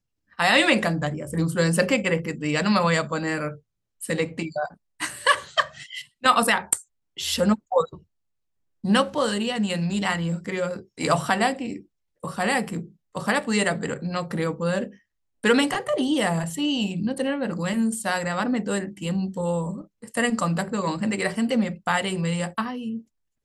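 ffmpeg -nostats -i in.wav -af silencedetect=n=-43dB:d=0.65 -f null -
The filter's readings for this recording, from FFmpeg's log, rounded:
silence_start: 7.99
silence_end: 8.84 | silence_duration: 0.85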